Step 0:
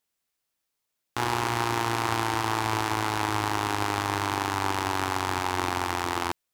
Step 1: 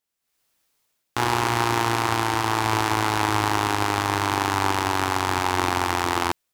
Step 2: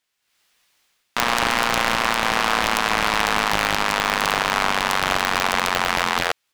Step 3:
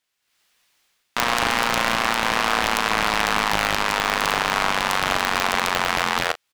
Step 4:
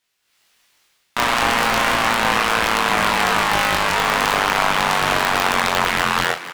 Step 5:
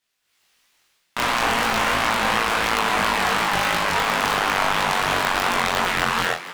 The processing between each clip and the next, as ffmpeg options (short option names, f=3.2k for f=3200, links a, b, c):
-af "dynaudnorm=f=210:g=3:m=14dB,volume=-3dB"
-af "equalizer=f=2.5k:w=0.36:g=12,alimiter=limit=-2.5dB:level=0:latency=1:release=276,aeval=exprs='val(0)*sgn(sin(2*PI*130*n/s))':c=same"
-filter_complex "[0:a]asplit=2[a][b];[b]adelay=37,volume=-13.5dB[c];[a][c]amix=inputs=2:normalize=0,volume=-1dB"
-filter_complex "[0:a]aeval=exprs='0.841*sin(PI/2*1.58*val(0)/0.841)':c=same,flanger=delay=19:depth=4.6:speed=0.4,asplit=7[a][b][c][d][e][f][g];[b]adelay=478,afreqshift=130,volume=-15dB[h];[c]adelay=956,afreqshift=260,volume=-19.9dB[i];[d]adelay=1434,afreqshift=390,volume=-24.8dB[j];[e]adelay=1912,afreqshift=520,volume=-29.6dB[k];[f]adelay=2390,afreqshift=650,volume=-34.5dB[l];[g]adelay=2868,afreqshift=780,volume=-39.4dB[m];[a][h][i][j][k][l][m]amix=inputs=7:normalize=0"
-af "flanger=delay=17:depth=6.3:speed=2.9"